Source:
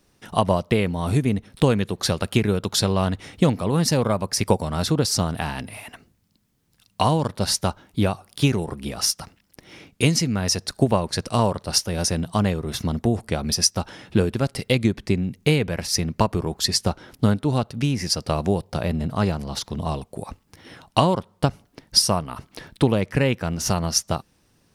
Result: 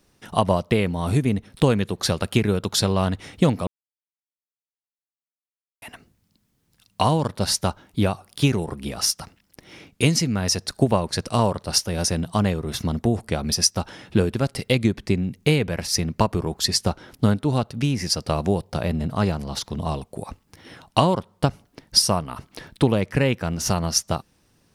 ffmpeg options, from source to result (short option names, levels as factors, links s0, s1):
-filter_complex "[0:a]asplit=3[s0][s1][s2];[s0]atrim=end=3.67,asetpts=PTS-STARTPTS,afade=t=out:st=3.666:d=0.004:c=hsin[s3];[s1]atrim=start=3.67:end=5.82,asetpts=PTS-STARTPTS,volume=0[s4];[s2]atrim=start=5.82,asetpts=PTS-STARTPTS,afade=t=in:d=0.004:c=hsin[s5];[s3][s4][s5]concat=n=3:v=0:a=1"